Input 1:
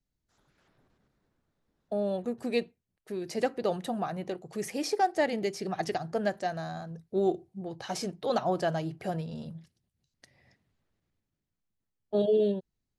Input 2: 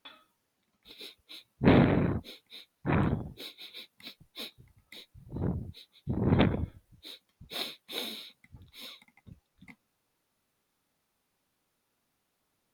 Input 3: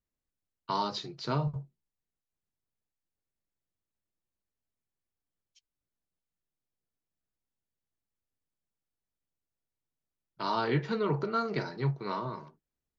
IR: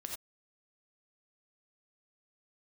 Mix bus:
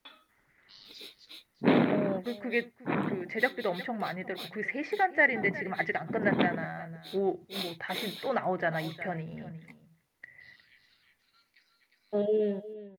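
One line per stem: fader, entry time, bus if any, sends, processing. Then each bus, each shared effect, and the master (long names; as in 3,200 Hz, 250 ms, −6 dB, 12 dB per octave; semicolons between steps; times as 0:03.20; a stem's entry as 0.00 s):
−3.0 dB, 0.00 s, no send, echo send −16 dB, low-pass with resonance 2,000 Hz, resonance Q 9.8
−1.0 dB, 0.00 s, no send, no echo send, high-pass filter 180 Hz 24 dB per octave
−4.5 dB, 0.00 s, no send, echo send −22.5 dB, Chebyshev high-pass filter 1,900 Hz, order 4; automatic ducking −17 dB, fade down 1.80 s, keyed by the first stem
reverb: not used
echo: single-tap delay 358 ms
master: no processing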